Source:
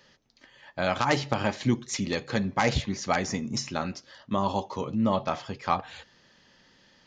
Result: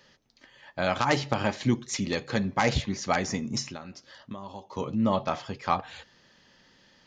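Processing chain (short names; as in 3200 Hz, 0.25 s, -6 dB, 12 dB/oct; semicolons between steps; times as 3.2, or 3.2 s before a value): 3.62–4.77 compressor 16:1, threshold -36 dBFS, peak gain reduction 15.5 dB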